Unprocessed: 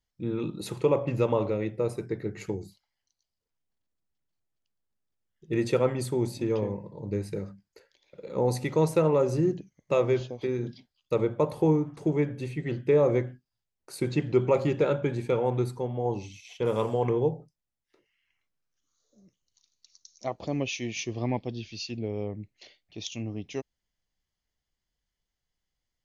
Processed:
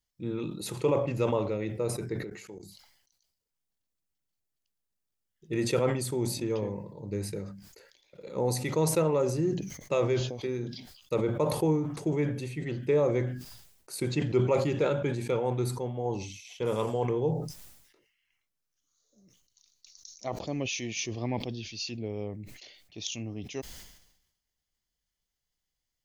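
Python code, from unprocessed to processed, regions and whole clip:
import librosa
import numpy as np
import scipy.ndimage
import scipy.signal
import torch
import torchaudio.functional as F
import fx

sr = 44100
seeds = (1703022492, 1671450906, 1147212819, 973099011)

y = fx.chain(x, sr, fx.highpass(hz=110.0, slope=12),
    fx.low_shelf(hz=250.0, db=-8.5),
    fx.level_steps(step_db=20), at=(2.23, 2.63))
y = fx.high_shelf(y, sr, hz=4300.0, db=8.5)
y = fx.sustainer(y, sr, db_per_s=64.0)
y = y * 10.0 ** (-3.5 / 20.0)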